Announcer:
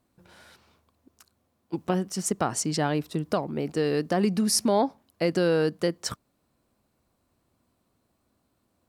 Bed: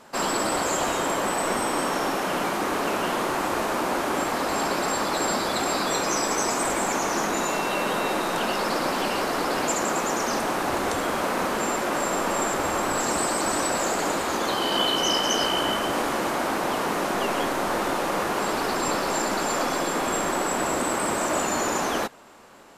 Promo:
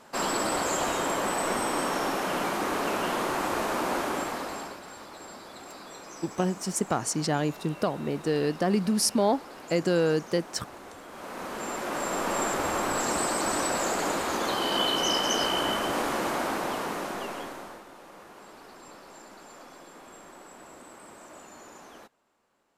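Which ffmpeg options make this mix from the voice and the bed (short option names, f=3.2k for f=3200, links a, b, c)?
-filter_complex "[0:a]adelay=4500,volume=-1dB[a];[1:a]volume=13.5dB,afade=t=out:st=3.97:d=0.84:silence=0.149624,afade=t=in:st=11.09:d=1.29:silence=0.149624,afade=t=out:st=16.35:d=1.49:silence=0.1[b];[a][b]amix=inputs=2:normalize=0"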